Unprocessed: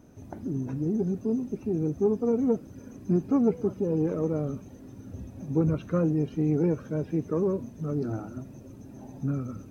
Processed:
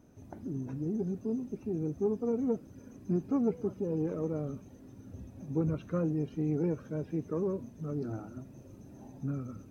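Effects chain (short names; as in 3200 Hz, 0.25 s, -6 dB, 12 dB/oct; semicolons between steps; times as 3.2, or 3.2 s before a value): 8.53–9.08 doubler 40 ms -5.5 dB; gain -6 dB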